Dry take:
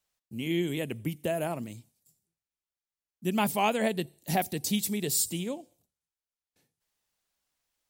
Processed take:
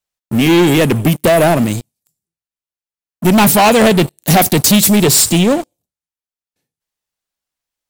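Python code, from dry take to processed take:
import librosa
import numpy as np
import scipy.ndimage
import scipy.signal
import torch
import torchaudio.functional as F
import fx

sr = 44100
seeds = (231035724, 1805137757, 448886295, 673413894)

y = fx.high_shelf(x, sr, hz=8500.0, db=-9.0, at=(5.04, 5.51))
y = fx.leveller(y, sr, passes=5)
y = F.gain(torch.from_numpy(y), 7.5).numpy()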